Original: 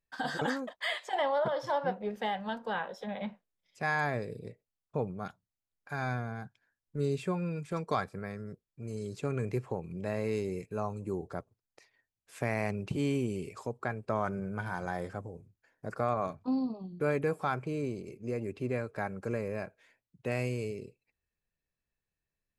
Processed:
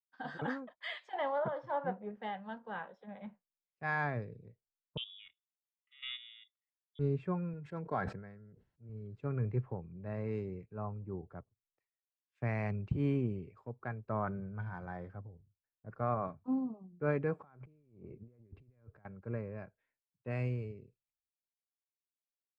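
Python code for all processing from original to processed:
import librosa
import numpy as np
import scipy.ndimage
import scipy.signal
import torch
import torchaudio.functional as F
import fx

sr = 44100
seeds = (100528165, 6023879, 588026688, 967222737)

y = fx.chain(x, sr, fx.freq_invert(carrier_hz=3600),
    fx.level_steps(step_db=11), at=(4.97, 6.99))
y = fx.chain(y, sr, fx.notch_comb(f0_hz=1200.0),
    fx.sustainer(db_per_s=43.0), at=(7.53, 8.89))
y = fx.chain(y, sr, fx.high_shelf(hz=2500.0, db=-9.0),
    fx.over_compress(threshold_db=-46.0, ratio=-1.0), at=(17.4, 19.05))
y = scipy.signal.sosfilt(scipy.signal.butter(2, 1400.0, 'lowpass', fs=sr, output='sos'), y)
y = fx.peak_eq(y, sr, hz=510.0, db=-8.5, octaves=3.0)
y = fx.band_widen(y, sr, depth_pct=100)
y = y * 10.0 ** (1.0 / 20.0)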